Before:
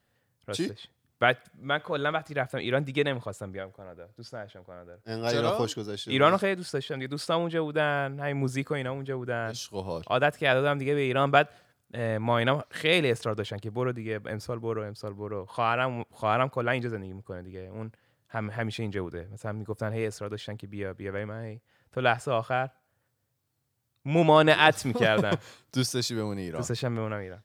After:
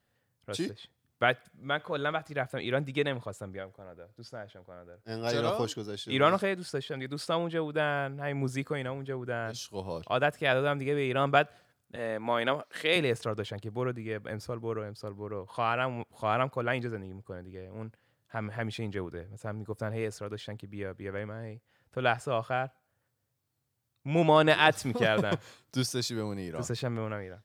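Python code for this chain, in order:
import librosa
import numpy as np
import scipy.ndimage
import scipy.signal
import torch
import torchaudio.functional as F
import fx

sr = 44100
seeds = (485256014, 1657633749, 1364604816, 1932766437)

y = fx.highpass(x, sr, hz=240.0, slope=12, at=(11.96, 12.96))
y = y * 10.0 ** (-3.0 / 20.0)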